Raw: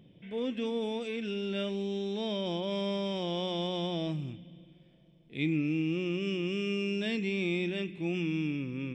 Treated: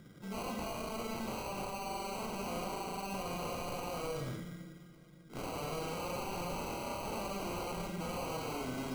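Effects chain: wavefolder -36.5 dBFS; valve stage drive 41 dB, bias 0.6; sample-and-hold 25×; Schroeder reverb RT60 0.81 s, combs from 31 ms, DRR 2.5 dB; trim +4.5 dB

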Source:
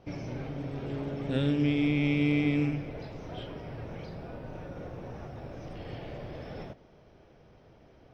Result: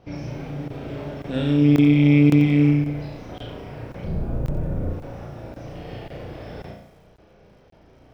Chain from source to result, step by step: 4.04–4.90 s: tilt EQ -4 dB/octave; on a send: flutter echo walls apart 5.9 m, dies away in 0.57 s; on the sum: crackling interface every 0.54 s, samples 1024, zero, from 0.68 s; bit-crushed delay 89 ms, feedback 55%, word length 9-bit, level -14.5 dB; trim +2.5 dB

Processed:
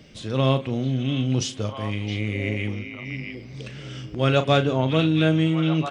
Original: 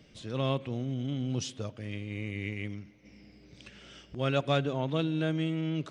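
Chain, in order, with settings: doubling 38 ms -10.5 dB; repeats whose band climbs or falls 667 ms, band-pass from 2.6 kHz, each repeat -1.4 oct, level -3.5 dB; trim +8.5 dB

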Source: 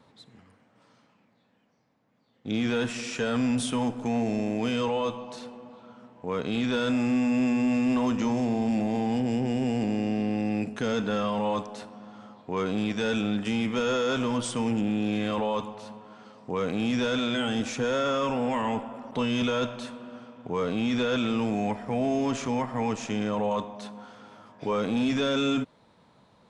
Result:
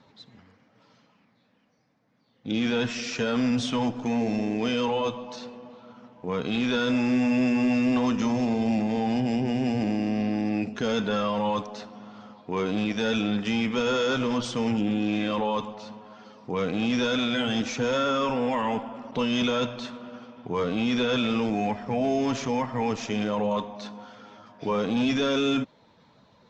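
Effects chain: coarse spectral quantiser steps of 15 dB; steep low-pass 6.2 kHz 36 dB/octave; treble shelf 4.8 kHz +6 dB; trim +1.5 dB

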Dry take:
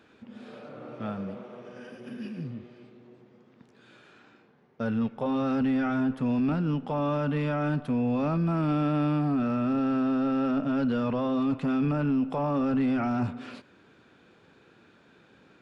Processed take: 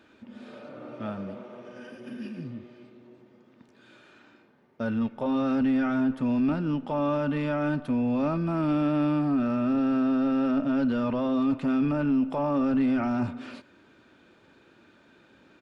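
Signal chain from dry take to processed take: comb 3.3 ms, depth 33%

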